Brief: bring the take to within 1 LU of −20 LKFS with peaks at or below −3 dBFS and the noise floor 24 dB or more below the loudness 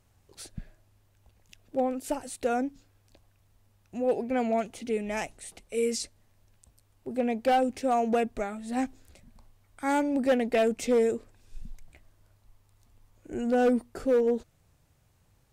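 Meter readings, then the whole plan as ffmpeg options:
integrated loudness −28.5 LKFS; sample peak −17.0 dBFS; target loudness −20.0 LKFS
→ -af "volume=8.5dB"

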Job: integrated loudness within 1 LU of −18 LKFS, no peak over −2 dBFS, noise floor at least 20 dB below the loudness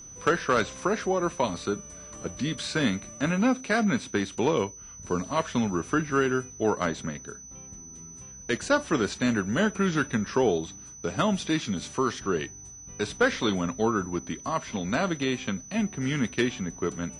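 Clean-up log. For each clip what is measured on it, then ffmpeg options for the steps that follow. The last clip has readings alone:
interfering tone 6,000 Hz; level of the tone −43 dBFS; integrated loudness −27.5 LKFS; sample peak −12.5 dBFS; target loudness −18.0 LKFS
→ -af "bandreject=frequency=6000:width=30"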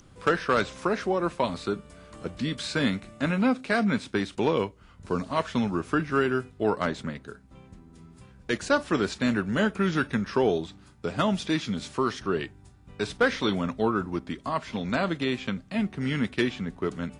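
interfering tone none found; integrated loudness −27.5 LKFS; sample peak −12.5 dBFS; target loudness −18.0 LKFS
→ -af "volume=9.5dB"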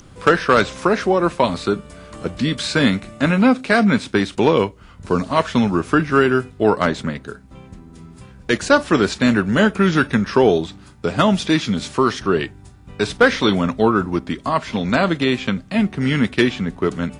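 integrated loudness −18.0 LKFS; sample peak −3.0 dBFS; background noise floor −44 dBFS

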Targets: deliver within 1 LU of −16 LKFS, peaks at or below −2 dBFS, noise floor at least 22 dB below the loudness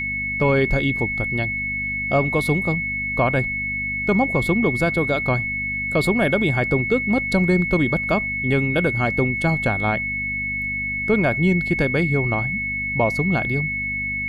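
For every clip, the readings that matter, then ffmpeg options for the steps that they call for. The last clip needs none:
mains hum 50 Hz; hum harmonics up to 250 Hz; level of the hum −32 dBFS; interfering tone 2,200 Hz; level of the tone −23 dBFS; integrated loudness −20.5 LKFS; sample peak −6.5 dBFS; target loudness −16.0 LKFS
→ -af "bandreject=frequency=50:width_type=h:width=4,bandreject=frequency=100:width_type=h:width=4,bandreject=frequency=150:width_type=h:width=4,bandreject=frequency=200:width_type=h:width=4,bandreject=frequency=250:width_type=h:width=4"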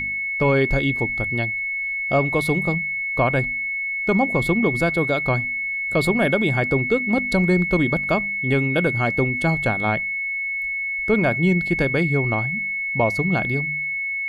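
mains hum none found; interfering tone 2,200 Hz; level of the tone −23 dBFS
→ -af "bandreject=frequency=2200:width=30"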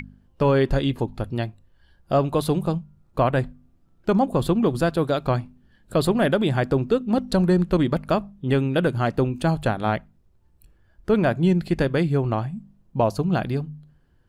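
interfering tone none found; integrated loudness −23.0 LKFS; sample peak −8.0 dBFS; target loudness −16.0 LKFS
→ -af "volume=7dB,alimiter=limit=-2dB:level=0:latency=1"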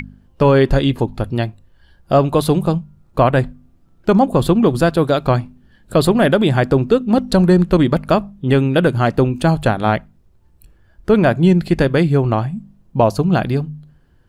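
integrated loudness −16.0 LKFS; sample peak −2.0 dBFS; background noise floor −53 dBFS

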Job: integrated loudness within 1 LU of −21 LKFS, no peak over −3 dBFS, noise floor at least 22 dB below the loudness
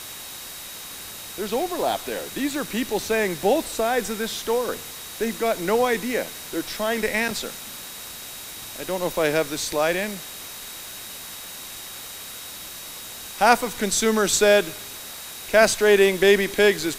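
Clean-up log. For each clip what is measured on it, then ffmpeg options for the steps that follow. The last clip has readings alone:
interfering tone 3,800 Hz; level of the tone −44 dBFS; background noise floor −38 dBFS; target noise floor −44 dBFS; integrated loudness −22.0 LKFS; sample peak −2.0 dBFS; target loudness −21.0 LKFS
→ -af "bandreject=frequency=3800:width=30"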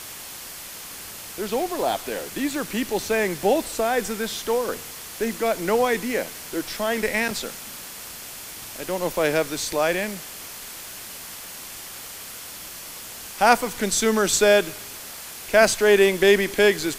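interfering tone none found; background noise floor −38 dBFS; target noise floor −44 dBFS
→ -af "afftdn=noise_reduction=6:noise_floor=-38"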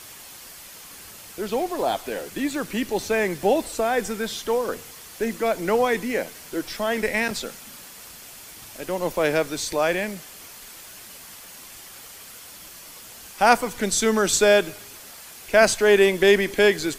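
background noise floor −43 dBFS; target noise floor −45 dBFS
→ -af "afftdn=noise_reduction=6:noise_floor=-43"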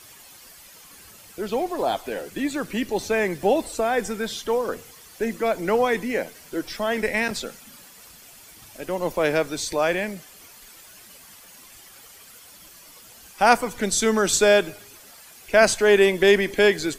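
background noise floor −48 dBFS; integrated loudness −22.5 LKFS; sample peak −2.0 dBFS; target loudness −21.0 LKFS
→ -af "volume=1.5dB,alimiter=limit=-3dB:level=0:latency=1"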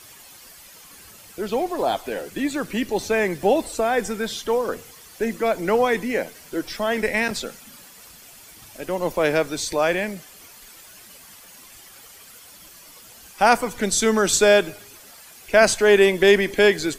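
integrated loudness −21.0 LKFS; sample peak −3.0 dBFS; background noise floor −46 dBFS

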